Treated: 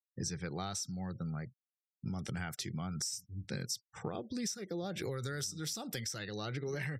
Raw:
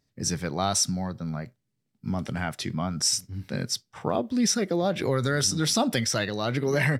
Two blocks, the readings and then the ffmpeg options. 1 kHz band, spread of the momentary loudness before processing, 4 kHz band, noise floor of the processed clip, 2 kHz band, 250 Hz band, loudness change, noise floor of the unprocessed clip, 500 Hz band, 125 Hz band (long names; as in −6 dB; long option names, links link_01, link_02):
−15.0 dB, 9 LU, −13.0 dB, below −85 dBFS, −13.0 dB, −13.0 dB, −13.0 dB, −78 dBFS, −14.0 dB, −10.5 dB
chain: -filter_complex "[0:a]acrossover=split=6300[link_01][link_02];[link_02]dynaudnorm=framelen=350:gausssize=7:maxgain=13.5dB[link_03];[link_01][link_03]amix=inputs=2:normalize=0,afftfilt=real='re*gte(hypot(re,im),0.00562)':imag='im*gte(hypot(re,im),0.00562)':win_size=1024:overlap=0.75,equalizer=frequency=250:width_type=o:width=0.33:gain=-9,equalizer=frequency=630:width_type=o:width=0.33:gain=-10,equalizer=frequency=1000:width_type=o:width=0.33:gain=-9,equalizer=frequency=10000:width_type=o:width=0.33:gain=-10,acompressor=threshold=-37dB:ratio=6,adynamicequalizer=threshold=0.00126:dfrequency=2000:dqfactor=0.7:tfrequency=2000:tqfactor=0.7:attack=5:release=100:ratio=0.375:range=1.5:mode=cutabove:tftype=highshelf,volume=1dB"